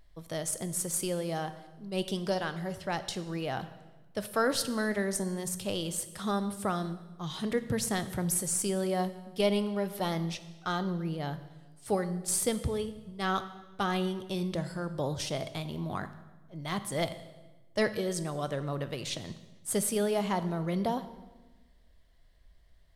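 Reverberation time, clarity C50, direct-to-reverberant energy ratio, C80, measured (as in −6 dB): 1.2 s, 13.0 dB, 11.0 dB, 15.0 dB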